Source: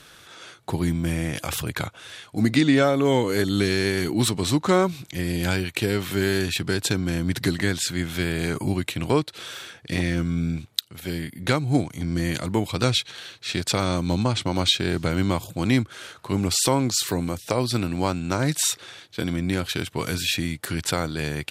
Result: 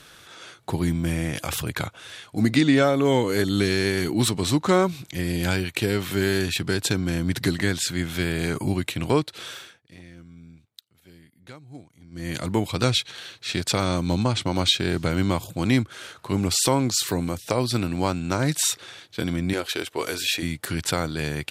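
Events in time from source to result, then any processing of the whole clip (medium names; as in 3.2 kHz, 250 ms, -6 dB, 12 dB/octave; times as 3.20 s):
9.49–12.44 s: dip -21.5 dB, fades 0.33 s
19.53–20.43 s: resonant low shelf 260 Hz -12 dB, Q 1.5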